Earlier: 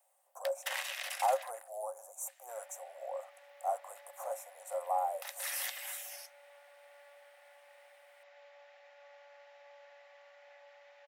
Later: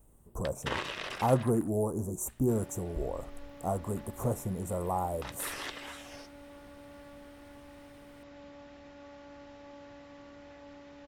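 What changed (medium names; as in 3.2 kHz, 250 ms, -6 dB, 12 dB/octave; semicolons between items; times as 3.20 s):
speech -4.0 dB; first sound: add low-pass 3.1 kHz 12 dB/octave; master: remove rippled Chebyshev high-pass 530 Hz, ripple 9 dB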